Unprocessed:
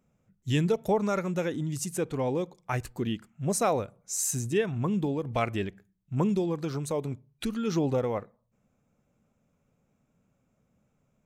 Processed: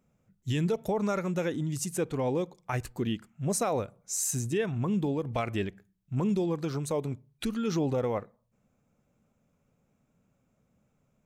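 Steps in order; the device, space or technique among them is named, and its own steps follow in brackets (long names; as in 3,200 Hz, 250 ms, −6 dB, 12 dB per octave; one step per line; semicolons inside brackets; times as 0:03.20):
clipper into limiter (hard clipping −14.5 dBFS, distortion −48 dB; brickwall limiter −20 dBFS, peak gain reduction 5.5 dB)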